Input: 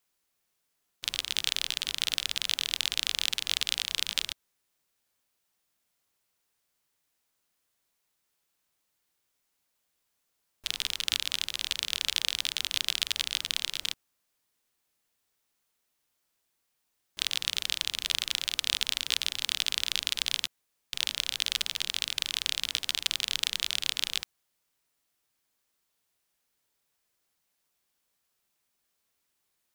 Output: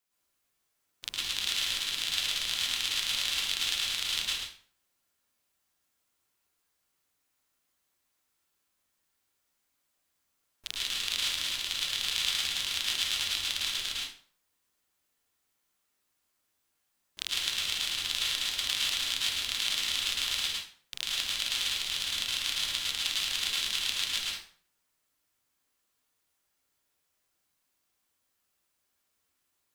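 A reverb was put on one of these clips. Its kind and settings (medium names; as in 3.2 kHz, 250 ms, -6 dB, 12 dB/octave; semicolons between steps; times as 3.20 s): plate-style reverb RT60 0.5 s, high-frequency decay 0.75×, pre-delay 95 ms, DRR -6 dB; trim -6 dB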